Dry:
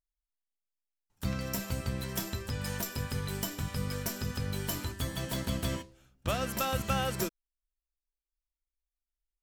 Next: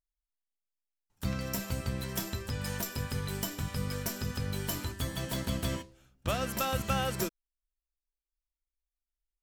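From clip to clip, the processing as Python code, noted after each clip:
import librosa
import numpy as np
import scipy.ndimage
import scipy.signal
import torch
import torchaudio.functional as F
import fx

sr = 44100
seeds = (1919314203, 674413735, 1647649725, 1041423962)

y = x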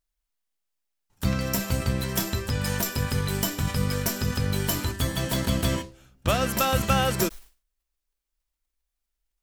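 y = fx.sustainer(x, sr, db_per_s=150.0)
y = F.gain(torch.from_numpy(y), 8.0).numpy()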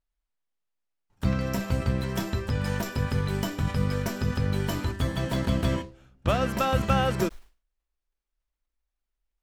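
y = fx.lowpass(x, sr, hz=2000.0, slope=6)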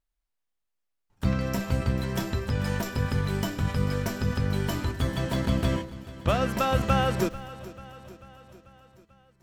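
y = fx.echo_feedback(x, sr, ms=441, feedback_pct=58, wet_db=-17.0)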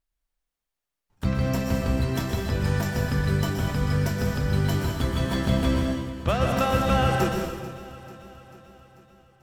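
y = fx.rev_plate(x, sr, seeds[0], rt60_s=1.1, hf_ratio=0.95, predelay_ms=110, drr_db=1.5)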